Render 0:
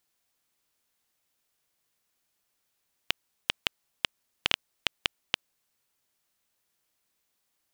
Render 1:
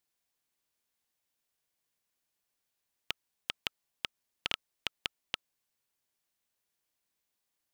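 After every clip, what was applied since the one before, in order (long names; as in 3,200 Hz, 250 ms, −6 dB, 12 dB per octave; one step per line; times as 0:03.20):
notch filter 1,300 Hz, Q 16
level −6.5 dB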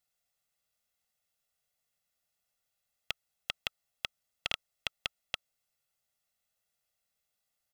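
comb filter 1.5 ms, depth 69%
level −1.5 dB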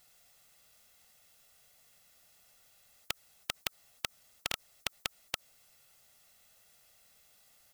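every bin compressed towards the loudest bin 2 to 1
level +1.5 dB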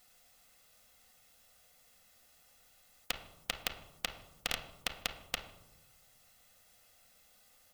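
convolution reverb RT60 1.0 s, pre-delay 4 ms, DRR 2.5 dB
level −1 dB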